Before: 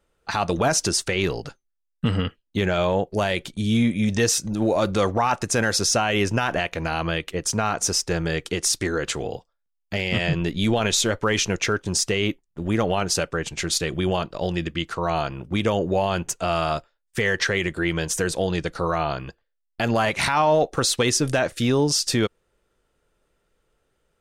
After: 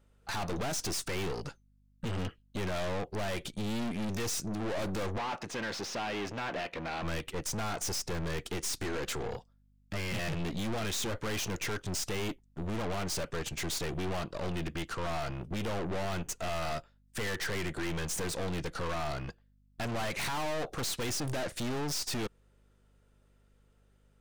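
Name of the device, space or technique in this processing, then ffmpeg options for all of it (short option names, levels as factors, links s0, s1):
valve amplifier with mains hum: -filter_complex "[0:a]aeval=exprs='(tanh(44.7*val(0)+0.55)-tanh(0.55))/44.7':c=same,aeval=exprs='val(0)+0.000562*(sin(2*PI*50*n/s)+sin(2*PI*2*50*n/s)/2+sin(2*PI*3*50*n/s)/3+sin(2*PI*4*50*n/s)/4+sin(2*PI*5*50*n/s)/5)':c=same,asettb=1/sr,asplit=3[s0][s1][s2];[s0]atrim=end=5.184[s3];[s1]atrim=start=5.18:end=7.03,asetpts=PTS-STARTPTS,afade=t=in:d=0.004:c=qsin,afade=t=out:st=1.846:d=0.004:c=qsin,acrossover=split=160 5200:gain=0.2 1 0.158[s4][s5][s6];[s4][s5][s6]amix=inputs=3:normalize=0[s7];[s2]atrim=start=7.026[s8];[s3][s7]acrossfade=d=0.004:c1=hsin:c2=qsin[s9];[s9][s8]acrossfade=d=0.004:c1=qsin:c2=hsin"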